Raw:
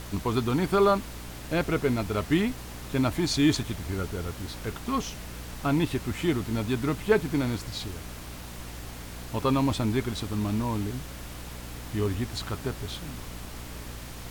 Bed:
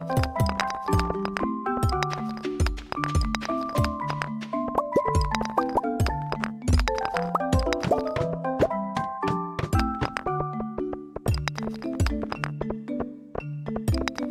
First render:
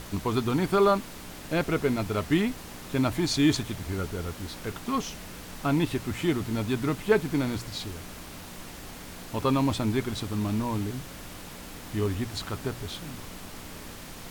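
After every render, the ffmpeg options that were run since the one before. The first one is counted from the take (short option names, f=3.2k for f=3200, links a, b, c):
-af "bandreject=f=60:t=h:w=4,bandreject=f=120:t=h:w=4"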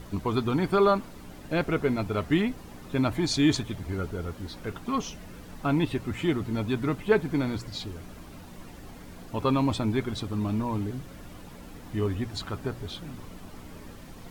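-af "afftdn=nr=10:nf=-43"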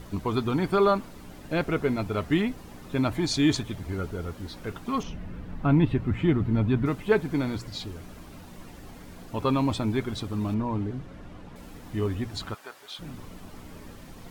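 -filter_complex "[0:a]asettb=1/sr,asplit=3[a][b][c];[a]atrim=end=5.034[d];[b]atrim=start=5.03:end=6.86,asetpts=PTS-STARTPTS,afade=t=in:d=0.004:c=qsin,afade=t=out:st=1.826:d=0.004:c=qsin,bass=f=250:g=8,treble=f=4k:g=-15[e];[c]atrim=start=6.856[f];[d][e]acrossfade=d=0.004:c1=hsin:c2=qsin[g];[g][f]acrossfade=d=0.004:c1=qsin:c2=hsin,asettb=1/sr,asplit=3[h][i][j];[h]atrim=end=10.544[k];[i]atrim=start=10.54:end=11.56,asetpts=PTS-STARTPTS,afade=t=in:d=0.004:c=qsin,afade=t=out:st=1.016:d=0.004:c=qsin,aemphasis=mode=reproduction:type=75fm[l];[j]atrim=start=11.556[m];[k][l]acrossfade=d=0.004:c1=hsin:c2=qsin[n];[n][m]acrossfade=d=0.004:c1=qsin:c2=hsin,asplit=3[o][p][q];[o]afade=t=out:st=12.53:d=0.02[r];[p]highpass=850,afade=t=in:st=12.53:d=0.02,afade=t=out:st=12.98:d=0.02[s];[q]afade=t=in:st=12.98:d=0.02[t];[r][s][t]amix=inputs=3:normalize=0"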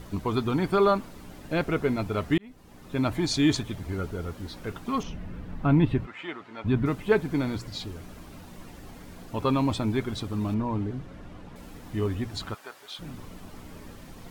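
-filter_complex "[0:a]asplit=3[a][b][c];[a]afade=t=out:st=6.05:d=0.02[d];[b]highpass=770,lowpass=7.5k,afade=t=in:st=6.05:d=0.02,afade=t=out:st=6.64:d=0.02[e];[c]afade=t=in:st=6.64:d=0.02[f];[d][e][f]amix=inputs=3:normalize=0,asplit=2[g][h];[g]atrim=end=2.38,asetpts=PTS-STARTPTS,afade=t=out:st=2.376:d=0.004:c=hsin[i];[h]atrim=start=2.38,asetpts=PTS-STARTPTS,afade=t=in:d=0.7[j];[i][j]concat=n=2:v=0:a=1"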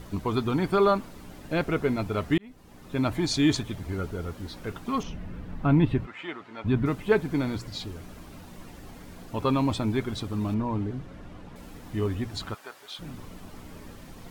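-af anull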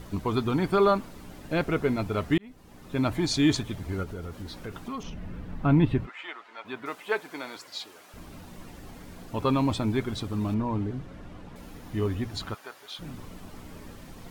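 -filter_complex "[0:a]asettb=1/sr,asplit=3[a][b][c];[a]atrim=end=4.034[d];[b]atrim=start=4.03:end=5.23,asetpts=PTS-STARTPTS,afade=t=in:d=0.004:c=qsin,afade=t=out:st=1.196:d=0.004:c=qsin,acompressor=threshold=-33dB:ratio=3:attack=3.2:release=140:knee=1:detection=peak[e];[c]atrim=start=5.226[f];[d][e]acrossfade=d=0.004:c1=hsin:c2=qsin[g];[g][f]acrossfade=d=0.004:c1=qsin:c2=hsin,asettb=1/sr,asplit=3[h][i][j];[h]atrim=end=6.094[k];[i]atrim=start=6.09:end=8.14,asetpts=PTS-STARTPTS,afade=t=in:d=0.004:c=qsin,afade=t=out:st=2.046:d=0.004:c=qsin,highpass=650[l];[j]atrim=start=8.136[m];[k][l]acrossfade=d=0.004:c1=hsin:c2=qsin[n];[n][m]acrossfade=d=0.004:c1=qsin:c2=hsin,asettb=1/sr,asplit=3[o][p][q];[o]atrim=end=11.594[r];[p]atrim=start=11.59:end=13.03,asetpts=PTS-STARTPTS,afade=t=in:d=0.004:c=qsin,afade=t=out:st=1.436:d=0.004:c=qsin,bandreject=f=7.9k:w=12[s];[q]atrim=start=13.026[t];[r][s]acrossfade=d=0.004:c1=hsin:c2=qsin[u];[u][t]acrossfade=d=0.004:c1=qsin:c2=hsin"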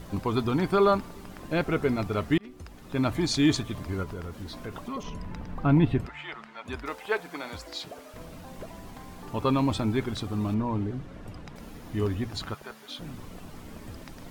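-filter_complex "[1:a]volume=-21dB[a];[0:a][a]amix=inputs=2:normalize=0"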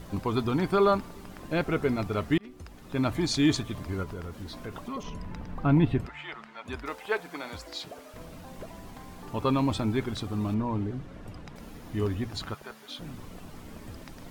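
-af "volume=-1dB"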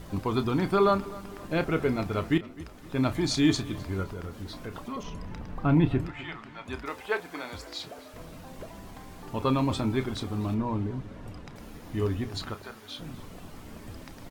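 -filter_complex "[0:a]asplit=2[a][b];[b]adelay=31,volume=-12dB[c];[a][c]amix=inputs=2:normalize=0,asplit=2[d][e];[e]adelay=257,lowpass=f=4.4k:p=1,volume=-19dB,asplit=2[f][g];[g]adelay=257,lowpass=f=4.4k:p=1,volume=0.47,asplit=2[h][i];[i]adelay=257,lowpass=f=4.4k:p=1,volume=0.47,asplit=2[j][k];[k]adelay=257,lowpass=f=4.4k:p=1,volume=0.47[l];[d][f][h][j][l]amix=inputs=5:normalize=0"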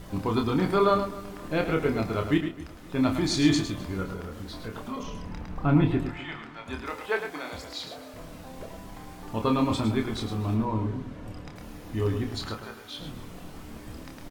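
-filter_complex "[0:a]asplit=2[a][b];[b]adelay=27,volume=-6dB[c];[a][c]amix=inputs=2:normalize=0,aecho=1:1:107:0.376"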